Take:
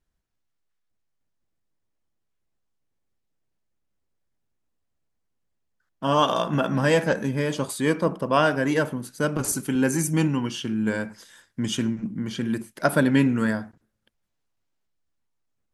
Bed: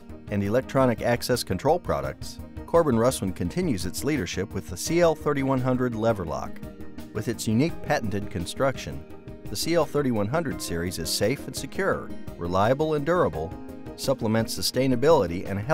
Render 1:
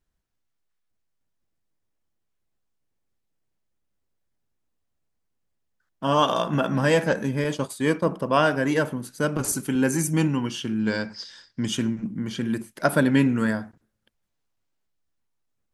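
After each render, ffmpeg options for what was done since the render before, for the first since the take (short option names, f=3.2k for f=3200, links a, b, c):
-filter_complex "[0:a]asettb=1/sr,asplit=3[a][b][c];[a]atrim=end=7.444[d];[b]atrim=start=7.44:end=8.07,asetpts=PTS-STARTPTS,afade=t=in:d=0.004:c=qsin,afade=t=out:st=0.626:d=0.004:c=qsin,agate=range=-33dB:threshold=-29dB:ratio=3:release=100:detection=peak[e];[c]atrim=start=8.066[f];[d][e]acrossfade=d=0.004:c1=hsin:c2=qsin[g];[g][f]acrossfade=d=0.004:c1=qsin:c2=hsin,asettb=1/sr,asplit=3[h][i][j];[h]atrim=end=10.794[k];[i]atrim=start=10.79:end=11.65,asetpts=PTS-STARTPTS,afade=t=in:d=0.004:c=qsin,afade=t=out:st=0.856:d=0.004:c=qsin,lowpass=f=4.9k:t=q:w=6.8[l];[j]atrim=start=11.646[m];[k][l]acrossfade=d=0.004:c1=hsin:c2=qsin[n];[n][m]acrossfade=d=0.004:c1=qsin:c2=hsin"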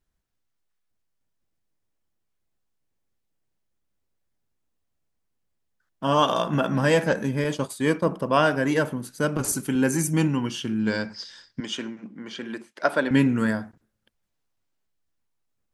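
-filter_complex "[0:a]asettb=1/sr,asplit=3[a][b][c];[a]atrim=end=11.604[d];[b]atrim=start=11.6:end=13.11,asetpts=PTS-STARTPTS,afade=t=in:d=0.004:c=qsin,afade=t=out:st=1.506:d=0.004:c=qsin,highpass=390,lowpass=5.1k[e];[c]atrim=start=13.106[f];[d][e]acrossfade=d=0.004:c1=hsin:c2=qsin[g];[g][f]acrossfade=d=0.004:c1=qsin:c2=hsin"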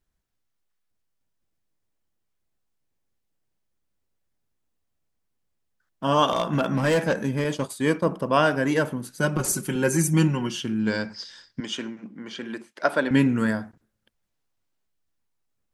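-filter_complex "[0:a]asettb=1/sr,asplit=3[a][b][c];[a]atrim=end=6.314[d];[b]atrim=start=6.31:end=7.67,asetpts=PTS-STARTPTS,afade=t=in:d=0.004:c=qsin,afade=t=out:st=1.356:d=0.004:c=qsin,asoftclip=type=hard:threshold=-16.5dB[e];[c]atrim=start=7.666[f];[d][e]acrossfade=d=0.004:c1=hsin:c2=qsin[g];[g][f]acrossfade=d=0.004:c1=qsin:c2=hsin,asettb=1/sr,asplit=3[h][i][j];[h]atrim=end=9.184[k];[i]atrim=start=9.18:end=10.61,asetpts=PTS-STARTPTS,afade=t=in:d=0.004:c=qsin,afade=t=out:st=1.426:d=0.004:c=qsin,aecho=1:1:5.5:0.65,atrim=end_sample=63063[l];[j]atrim=start=10.606[m];[k][l]acrossfade=d=0.004:c1=hsin:c2=qsin[n];[n][m]acrossfade=d=0.004:c1=qsin:c2=hsin"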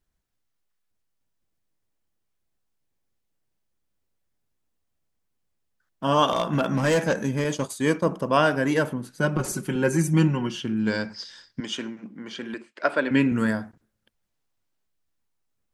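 -filter_complex "[0:a]asettb=1/sr,asplit=3[a][b][c];[a]atrim=end=6.694[d];[b]atrim=start=6.69:end=8.37,asetpts=PTS-STARTPTS,afade=t=in:d=0.004:c=qsin,afade=t=out:st=1.676:d=0.004:c=qsin,equalizer=f=6.5k:w=3.7:g=7[e];[c]atrim=start=8.366[f];[d][e]acrossfade=d=0.004:c1=hsin:c2=qsin[g];[g][f]acrossfade=d=0.004:c1=qsin:c2=hsin,asettb=1/sr,asplit=3[h][i][j];[h]atrim=end=8.934[k];[i]atrim=start=8.93:end=10.77,asetpts=PTS-STARTPTS,afade=t=in:d=0.004:c=qsin,afade=t=out:st=1.836:d=0.004:c=qsin,aemphasis=mode=reproduction:type=cd[l];[j]atrim=start=10.766[m];[k][l]acrossfade=d=0.004:c1=hsin:c2=qsin[n];[n][m]acrossfade=d=0.004:c1=qsin:c2=hsin,asettb=1/sr,asplit=3[o][p][q];[o]atrim=end=12.544[r];[p]atrim=start=12.54:end=13.32,asetpts=PTS-STARTPTS,afade=t=in:d=0.004:c=qsin,afade=t=out:st=0.776:d=0.004:c=qsin,highpass=130,equalizer=f=180:t=q:w=4:g=-8,equalizer=f=800:t=q:w=4:g=-5,equalizer=f=2.5k:t=q:w=4:g=4,equalizer=f=3.6k:t=q:w=4:g=-3,equalizer=f=6k:t=q:w=4:g=-9,lowpass=f=7.8k:w=0.5412,lowpass=f=7.8k:w=1.3066[s];[q]atrim=start=13.316[t];[r][s]acrossfade=d=0.004:c1=hsin:c2=qsin[u];[u][t]acrossfade=d=0.004:c1=qsin:c2=hsin"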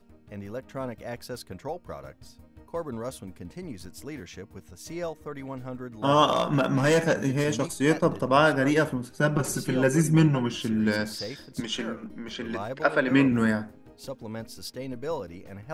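-filter_complex "[1:a]volume=-13dB[a];[0:a][a]amix=inputs=2:normalize=0"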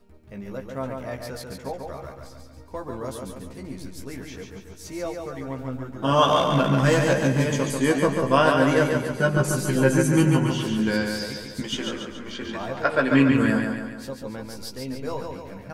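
-filter_complex "[0:a]asplit=2[a][b];[b]adelay=15,volume=-5dB[c];[a][c]amix=inputs=2:normalize=0,aecho=1:1:141|282|423|564|705|846|987:0.596|0.316|0.167|0.0887|0.047|0.0249|0.0132"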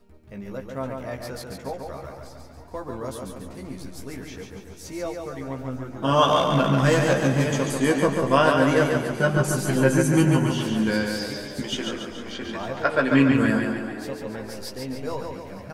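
-filter_complex "[0:a]asplit=6[a][b][c][d][e][f];[b]adelay=455,afreqshift=85,volume=-17dB[g];[c]adelay=910,afreqshift=170,volume=-22.4dB[h];[d]adelay=1365,afreqshift=255,volume=-27.7dB[i];[e]adelay=1820,afreqshift=340,volume=-33.1dB[j];[f]adelay=2275,afreqshift=425,volume=-38.4dB[k];[a][g][h][i][j][k]amix=inputs=6:normalize=0"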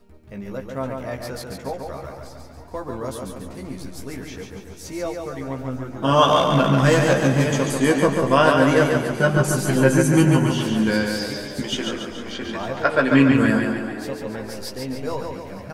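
-af "volume=3dB,alimiter=limit=-3dB:level=0:latency=1"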